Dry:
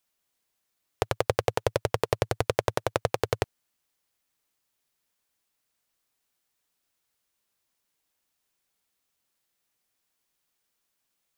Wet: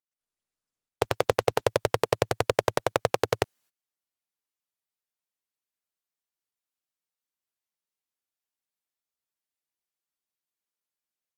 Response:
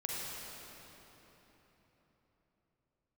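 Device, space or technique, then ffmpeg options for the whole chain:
video call: -af "highpass=f=150:p=1,dynaudnorm=f=130:g=3:m=9.5dB,agate=range=-22dB:threshold=-56dB:ratio=16:detection=peak,volume=-2dB" -ar 48000 -c:a libopus -b:a 32k

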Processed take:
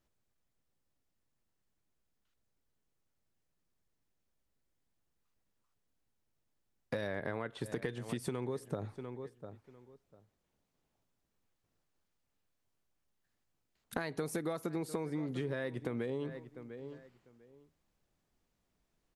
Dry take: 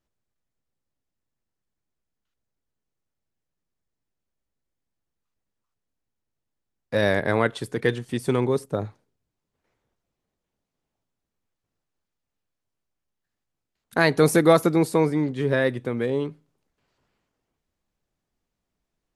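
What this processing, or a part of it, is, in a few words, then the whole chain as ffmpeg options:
serial compression, peaks first: -filter_complex "[0:a]asettb=1/sr,asplit=3[a][b][c];[a]atrim=end=7.074[d];[b]atrim=start=7.07:end=7.66,asetpts=PTS-STARTPTS,afade=t=in:d=0.004:c=qsin,afade=t=out:st=0.586:d=0.004:c=qsin,acrossover=split=3100[e][f];[f]acompressor=threshold=-47dB:ratio=4:attack=1:release=60[g];[e][g]amix=inputs=2:normalize=0[h];[c]atrim=start=7.656[i];[d][h]acrossfade=d=0.004:c1=hsin:c2=qsin[j];[j][i]acrossfade=d=0.004:c1=qsin:c2=hsin,asplit=2[k][l];[l]adelay=697,lowpass=f=3k:p=1,volume=-23dB,asplit=2[m][n];[n]adelay=697,lowpass=f=3k:p=1,volume=0.19[o];[k][m][o]amix=inputs=3:normalize=0,acompressor=threshold=-29dB:ratio=6,acompressor=threshold=-36dB:ratio=3,volume=1dB"

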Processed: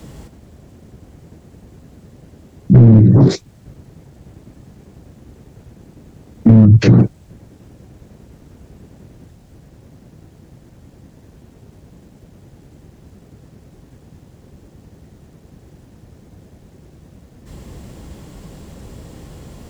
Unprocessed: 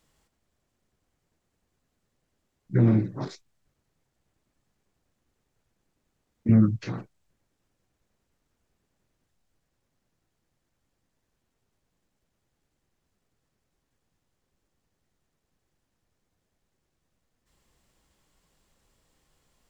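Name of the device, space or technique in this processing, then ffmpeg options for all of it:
mastering chain: -filter_complex "[0:a]highpass=57,equalizer=f=1.2k:t=o:w=0.77:g=-2,acrossover=split=210|440[a][b][c];[a]acompressor=threshold=-23dB:ratio=4[d];[b]acompressor=threshold=-33dB:ratio=4[e];[c]acompressor=threshold=-43dB:ratio=4[f];[d][e][f]amix=inputs=3:normalize=0,acompressor=threshold=-30dB:ratio=2.5,asoftclip=type=tanh:threshold=-26dB,tiltshelf=f=640:g=8.5,asoftclip=type=hard:threshold=-21.5dB,alimiter=level_in=32dB:limit=-1dB:release=50:level=0:latency=1,volume=-1dB"

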